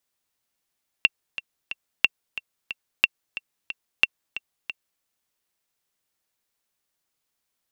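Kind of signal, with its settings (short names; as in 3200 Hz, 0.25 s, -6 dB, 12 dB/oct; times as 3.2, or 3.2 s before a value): metronome 181 bpm, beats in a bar 3, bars 4, 2720 Hz, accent 14.5 dB -2.5 dBFS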